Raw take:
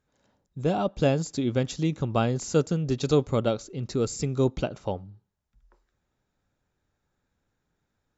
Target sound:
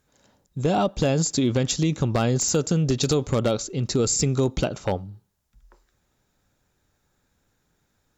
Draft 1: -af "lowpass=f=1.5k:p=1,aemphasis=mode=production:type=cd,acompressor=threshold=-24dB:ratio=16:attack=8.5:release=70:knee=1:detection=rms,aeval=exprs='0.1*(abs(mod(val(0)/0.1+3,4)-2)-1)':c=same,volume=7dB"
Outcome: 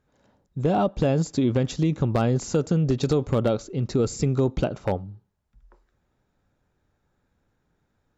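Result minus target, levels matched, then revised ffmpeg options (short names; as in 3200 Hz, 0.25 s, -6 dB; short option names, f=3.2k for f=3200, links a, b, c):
2000 Hz band -2.5 dB
-af "aemphasis=mode=production:type=cd,acompressor=threshold=-24dB:ratio=16:attack=8.5:release=70:knee=1:detection=rms,aeval=exprs='0.1*(abs(mod(val(0)/0.1+3,4)-2)-1)':c=same,volume=7dB"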